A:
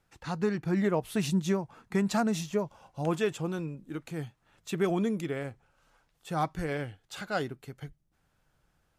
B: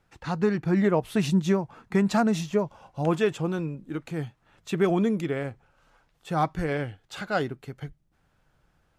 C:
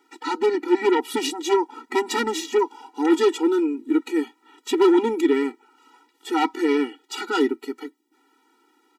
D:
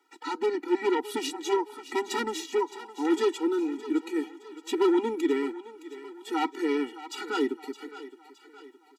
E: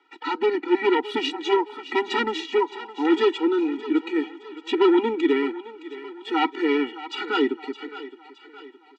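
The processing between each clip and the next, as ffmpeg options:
-af "highshelf=f=5600:g=-8.5,volume=1.78"
-af "aeval=exprs='0.282*(cos(1*acos(clip(val(0)/0.282,-1,1)))-cos(1*PI/2))+0.126*(cos(5*acos(clip(val(0)/0.282,-1,1)))-cos(5*PI/2))':c=same,aecho=1:1:3.1:0.44,afftfilt=real='re*eq(mod(floor(b*sr/1024/250),2),1)':imag='im*eq(mod(floor(b*sr/1024/250),2),1)':win_size=1024:overlap=0.75,volume=1.19"
-filter_complex "[0:a]acrossover=split=280[s0][s1];[s0]aeval=exprs='sgn(val(0))*max(abs(val(0))-0.00178,0)':c=same[s2];[s1]aecho=1:1:616|1232|1848|2464:0.2|0.0938|0.0441|0.0207[s3];[s2][s3]amix=inputs=2:normalize=0,volume=0.473"
-af "lowpass=f=3000:t=q:w=1.6,volume=1.78"

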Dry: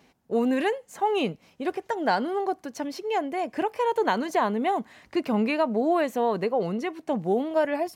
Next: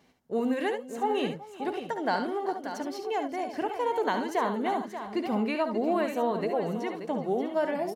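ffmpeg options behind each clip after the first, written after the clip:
-af "bandreject=f=2500:w=15,aecho=1:1:59|71|379|582|652:0.237|0.376|0.133|0.316|0.119,volume=0.596"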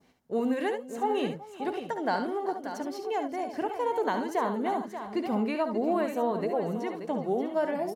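-af "adynamicequalizer=threshold=0.00447:dfrequency=3000:dqfactor=0.71:tfrequency=3000:tqfactor=0.71:attack=5:release=100:ratio=0.375:range=2.5:mode=cutabove:tftype=bell"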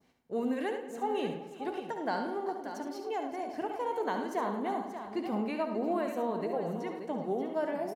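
-filter_complex "[0:a]flanger=delay=9:depth=8.8:regen=-84:speed=0.36:shape=triangular,asplit=2[s0][s1];[s1]adelay=106,lowpass=f=3900:p=1,volume=0.299,asplit=2[s2][s3];[s3]adelay=106,lowpass=f=3900:p=1,volume=0.48,asplit=2[s4][s5];[s5]adelay=106,lowpass=f=3900:p=1,volume=0.48,asplit=2[s6][s7];[s7]adelay=106,lowpass=f=3900:p=1,volume=0.48,asplit=2[s8][s9];[s9]adelay=106,lowpass=f=3900:p=1,volume=0.48[s10];[s0][s2][s4][s6][s8][s10]amix=inputs=6:normalize=0"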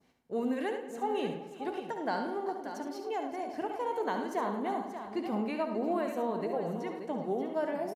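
-af "aresample=32000,aresample=44100"

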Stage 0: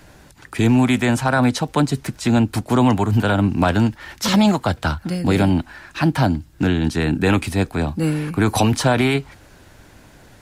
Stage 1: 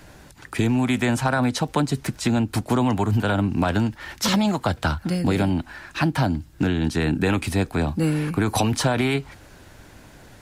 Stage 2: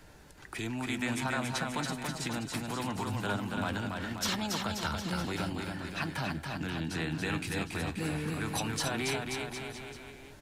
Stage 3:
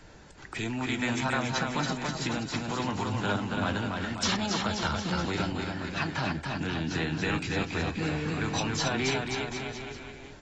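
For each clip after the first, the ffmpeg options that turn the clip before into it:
-af "acompressor=threshold=0.141:ratio=6"
-filter_complex "[0:a]acrossover=split=1100[s0][s1];[s0]alimiter=limit=0.0891:level=0:latency=1:release=211[s2];[s2][s1]amix=inputs=2:normalize=0,flanger=delay=2.2:depth=4:regen=74:speed=0.21:shape=sinusoidal,aecho=1:1:280|532|758.8|962.9|1147:0.631|0.398|0.251|0.158|0.1,volume=0.631"
-af "acrusher=bits=8:mode=log:mix=0:aa=0.000001,volume=1.41" -ar 24000 -c:a aac -b:a 24k

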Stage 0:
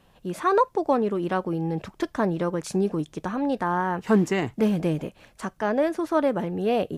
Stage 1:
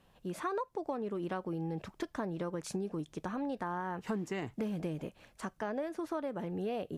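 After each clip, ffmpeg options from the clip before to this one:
-af "acompressor=threshold=0.0501:ratio=6,volume=0.447"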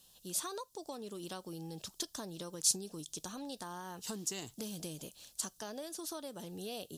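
-af "aexciter=amount=13.3:drive=5.7:freq=3300,volume=0.398"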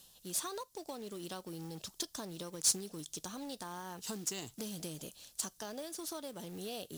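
-af "areverse,acompressor=mode=upward:threshold=0.00631:ratio=2.5,areverse,acrusher=bits=3:mode=log:mix=0:aa=0.000001"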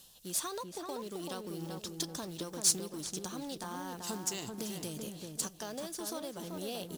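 -filter_complex "[0:a]asplit=2[s0][s1];[s1]adelay=385,lowpass=f=1600:p=1,volume=0.668,asplit=2[s2][s3];[s3]adelay=385,lowpass=f=1600:p=1,volume=0.32,asplit=2[s4][s5];[s5]adelay=385,lowpass=f=1600:p=1,volume=0.32,asplit=2[s6][s7];[s7]adelay=385,lowpass=f=1600:p=1,volume=0.32[s8];[s0][s2][s4][s6][s8]amix=inputs=5:normalize=0,volume=1.26"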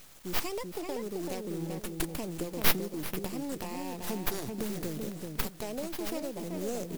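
-filter_complex "[0:a]acrossover=split=340|910[s0][s1][s2];[s2]aeval=exprs='abs(val(0))':c=same[s3];[s0][s1][s3]amix=inputs=3:normalize=0,acrusher=bits=9:mix=0:aa=0.000001,volume=1.88"

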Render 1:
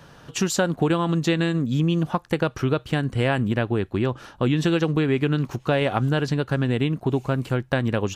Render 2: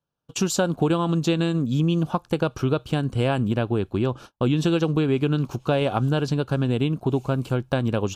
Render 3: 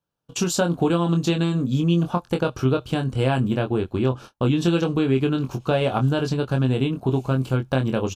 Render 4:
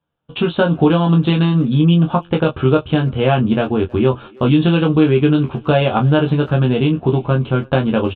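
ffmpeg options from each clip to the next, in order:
-af "agate=range=0.0141:threshold=0.0126:ratio=16:detection=peak,equalizer=f=1900:w=4.2:g=-14.5"
-filter_complex "[0:a]asplit=2[s0][s1];[s1]adelay=23,volume=0.531[s2];[s0][s2]amix=inputs=2:normalize=0"
-filter_complex "[0:a]aresample=8000,aresample=44100,asplit=2[s0][s1];[s1]adelay=13,volume=0.631[s2];[s0][s2]amix=inputs=2:normalize=0,asplit=2[s3][s4];[s4]adelay=320,highpass=300,lowpass=3400,asoftclip=type=hard:threshold=0.158,volume=0.0631[s5];[s3][s5]amix=inputs=2:normalize=0,volume=1.88"

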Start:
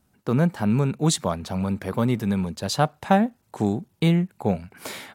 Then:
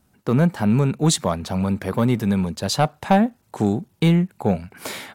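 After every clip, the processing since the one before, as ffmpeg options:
-af "acontrast=74,volume=0.708"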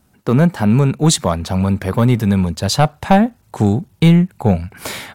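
-af "asubboost=boost=3:cutoff=140,volume=1.78"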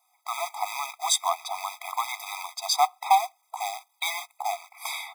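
-af "acrusher=bits=4:mode=log:mix=0:aa=0.000001,afftfilt=real='re*eq(mod(floor(b*sr/1024/650),2),1)':imag='im*eq(mod(floor(b*sr/1024/650),2),1)':win_size=1024:overlap=0.75,volume=0.708"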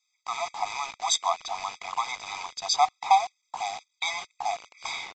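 -filter_complex "[0:a]acrossover=split=1900[s0][s1];[s0]acrusher=bits=6:mix=0:aa=0.000001[s2];[s2][s1]amix=inputs=2:normalize=0,aresample=16000,aresample=44100"

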